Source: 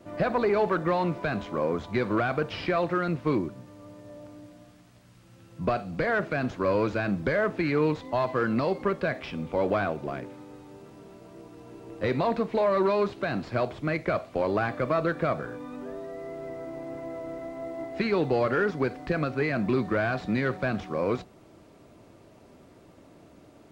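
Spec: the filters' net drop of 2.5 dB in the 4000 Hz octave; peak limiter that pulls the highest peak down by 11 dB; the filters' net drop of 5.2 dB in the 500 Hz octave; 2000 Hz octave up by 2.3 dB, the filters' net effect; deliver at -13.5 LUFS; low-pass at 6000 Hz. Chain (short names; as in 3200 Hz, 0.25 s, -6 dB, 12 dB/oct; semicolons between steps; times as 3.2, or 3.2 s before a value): LPF 6000 Hz; bell 500 Hz -7 dB; bell 2000 Hz +4.5 dB; bell 4000 Hz -4 dB; gain +22.5 dB; limiter -3.5 dBFS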